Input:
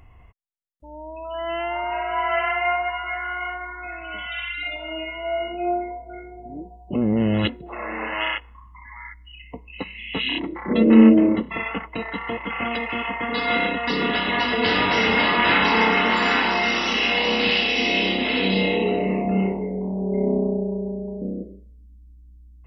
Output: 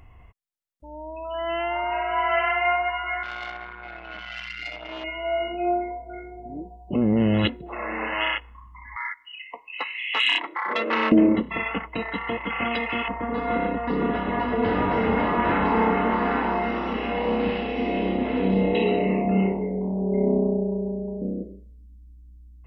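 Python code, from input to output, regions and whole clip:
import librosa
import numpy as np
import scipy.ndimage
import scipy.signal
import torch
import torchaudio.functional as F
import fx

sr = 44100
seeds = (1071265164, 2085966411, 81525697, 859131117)

y = fx.chain(x, sr, fx.high_shelf(hz=4300.0, db=-6.0),
    fx.transformer_sat(knee_hz=1600.0), at=(3.23, 5.04))
y = fx.chain(y, sr, fx.highpass(hz=760.0, slope=12),
    fx.peak_eq(hz=1300.0, db=11.0, octaves=1.8),
    fx.transformer_sat(knee_hz=1400.0), at=(8.96, 11.12))
y = fx.chain(y, sr, fx.lowpass(hz=1100.0, slope=12),
    fx.low_shelf(hz=64.0, db=10.5), at=(13.08, 18.75))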